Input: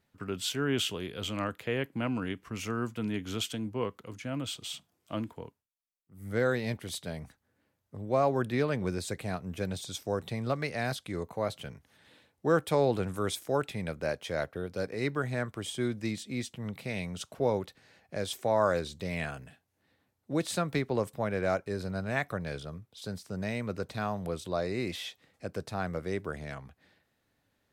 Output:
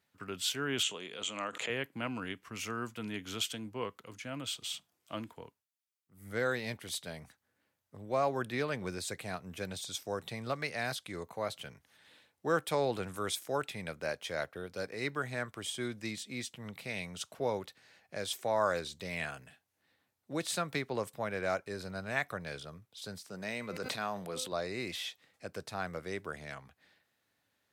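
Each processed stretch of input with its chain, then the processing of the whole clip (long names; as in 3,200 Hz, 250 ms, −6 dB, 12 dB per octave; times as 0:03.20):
0:00.83–0:01.70: loudspeaker in its box 230–8,500 Hz, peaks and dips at 330 Hz −4 dB, 1,600 Hz −4 dB, 4,900 Hz −9 dB, 7,100 Hz +9 dB + background raised ahead of every attack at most 85 dB per second
0:23.26–0:24.52: high-pass filter 150 Hz + hum removal 255.7 Hz, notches 19 + level that may fall only so fast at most 37 dB per second
whole clip: high-pass filter 70 Hz; tilt shelving filter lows −4.5 dB, about 660 Hz; level −4 dB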